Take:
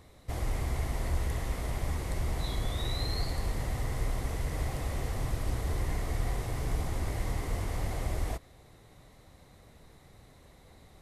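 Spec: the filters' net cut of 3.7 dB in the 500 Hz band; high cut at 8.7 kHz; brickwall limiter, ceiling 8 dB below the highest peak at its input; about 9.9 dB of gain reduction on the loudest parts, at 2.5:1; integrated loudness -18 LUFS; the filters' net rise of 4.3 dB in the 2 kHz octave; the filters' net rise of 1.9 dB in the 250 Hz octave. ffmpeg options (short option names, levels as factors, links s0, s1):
-af "lowpass=8700,equalizer=f=250:t=o:g=4.5,equalizer=f=500:t=o:g=-6.5,equalizer=f=2000:t=o:g=5,acompressor=threshold=0.00891:ratio=2.5,volume=29.9,alimiter=limit=0.473:level=0:latency=1"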